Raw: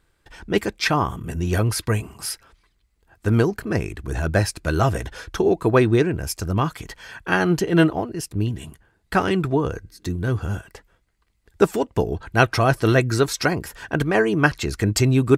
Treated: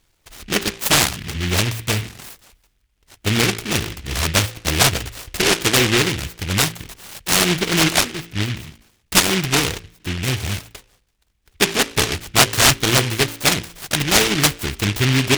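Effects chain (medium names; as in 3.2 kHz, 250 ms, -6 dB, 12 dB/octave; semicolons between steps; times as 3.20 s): low-pass 3.3 kHz 12 dB/octave; peaking EQ 770 Hz +14 dB 0.51 oct; de-hum 56.28 Hz, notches 10; in parallel at +2.5 dB: peak limiter -9 dBFS, peak gain reduction 11.5 dB; on the sum: delay time shaken by noise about 2.4 kHz, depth 0.4 ms; trim -6.5 dB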